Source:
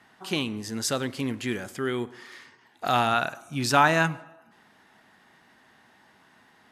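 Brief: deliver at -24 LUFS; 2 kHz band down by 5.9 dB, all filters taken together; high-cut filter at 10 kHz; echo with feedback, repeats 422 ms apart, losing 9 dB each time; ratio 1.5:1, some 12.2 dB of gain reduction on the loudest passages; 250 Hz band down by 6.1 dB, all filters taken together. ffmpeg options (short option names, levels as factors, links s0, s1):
-af "lowpass=10000,equalizer=f=250:t=o:g=-8,equalizer=f=2000:t=o:g=-8.5,acompressor=threshold=0.00251:ratio=1.5,aecho=1:1:422|844|1266|1688:0.355|0.124|0.0435|0.0152,volume=6.31"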